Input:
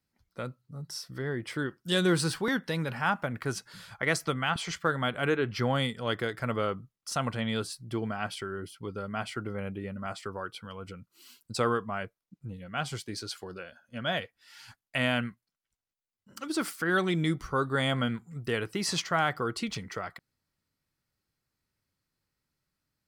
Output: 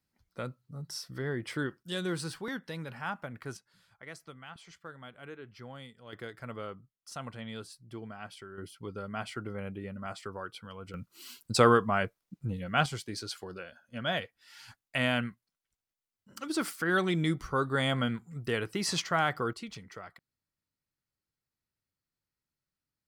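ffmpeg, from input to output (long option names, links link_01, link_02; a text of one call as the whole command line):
ffmpeg -i in.wav -af "asetnsamples=nb_out_samples=441:pad=0,asendcmd='1.83 volume volume -8.5dB;3.57 volume volume -18.5dB;6.13 volume volume -10.5dB;8.58 volume volume -3dB;10.94 volume volume 6dB;12.86 volume volume -1dB;19.53 volume volume -9dB',volume=-1dB" out.wav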